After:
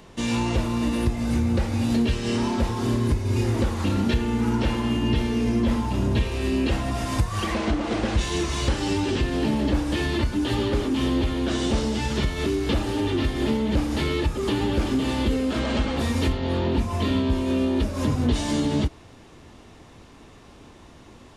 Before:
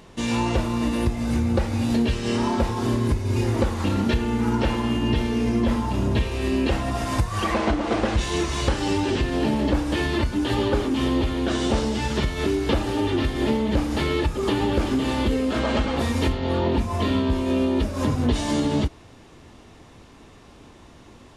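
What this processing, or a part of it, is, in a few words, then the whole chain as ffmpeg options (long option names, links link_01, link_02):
one-band saturation: -filter_complex "[0:a]acrossover=split=360|2200[link_01][link_02][link_03];[link_02]asoftclip=type=tanh:threshold=-28.5dB[link_04];[link_01][link_04][link_03]amix=inputs=3:normalize=0"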